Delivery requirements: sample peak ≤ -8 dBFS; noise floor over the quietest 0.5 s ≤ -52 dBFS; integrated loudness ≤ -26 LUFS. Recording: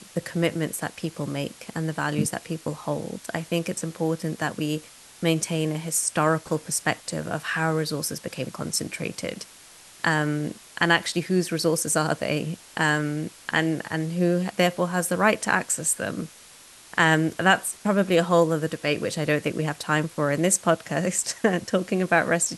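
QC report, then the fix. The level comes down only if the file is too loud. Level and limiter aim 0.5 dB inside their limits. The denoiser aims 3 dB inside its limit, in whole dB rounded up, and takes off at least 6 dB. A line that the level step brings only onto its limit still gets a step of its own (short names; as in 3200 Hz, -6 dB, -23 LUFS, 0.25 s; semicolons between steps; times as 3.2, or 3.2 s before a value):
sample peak -4.0 dBFS: fail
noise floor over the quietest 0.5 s -49 dBFS: fail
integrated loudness -25.0 LUFS: fail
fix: denoiser 6 dB, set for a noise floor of -49 dBFS; gain -1.5 dB; limiter -8.5 dBFS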